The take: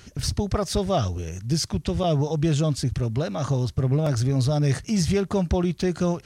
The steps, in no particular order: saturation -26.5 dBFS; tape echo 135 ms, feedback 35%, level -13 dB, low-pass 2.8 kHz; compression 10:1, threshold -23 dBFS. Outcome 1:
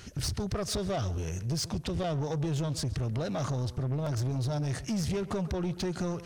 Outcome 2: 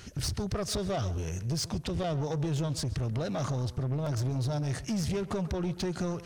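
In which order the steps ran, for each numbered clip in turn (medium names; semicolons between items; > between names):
compression > tape echo > saturation; compression > saturation > tape echo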